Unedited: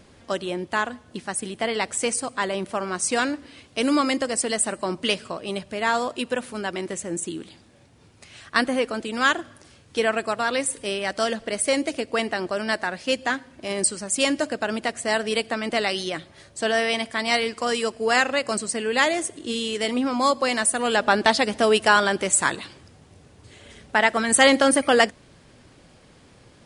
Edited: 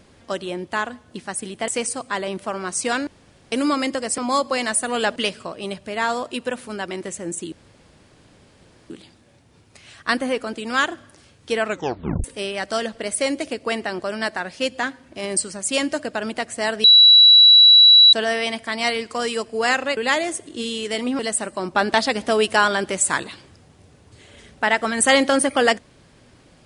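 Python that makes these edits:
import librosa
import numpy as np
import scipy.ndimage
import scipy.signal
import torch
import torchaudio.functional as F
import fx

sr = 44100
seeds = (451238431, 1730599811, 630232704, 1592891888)

y = fx.edit(x, sr, fx.cut(start_s=1.68, length_s=0.27),
    fx.room_tone_fill(start_s=3.34, length_s=0.45),
    fx.swap(start_s=4.45, length_s=0.56, other_s=20.09, other_length_s=0.98),
    fx.insert_room_tone(at_s=7.37, length_s=1.38),
    fx.tape_stop(start_s=10.14, length_s=0.57),
    fx.bleep(start_s=15.31, length_s=1.29, hz=3920.0, db=-6.5),
    fx.cut(start_s=18.44, length_s=0.43), tone=tone)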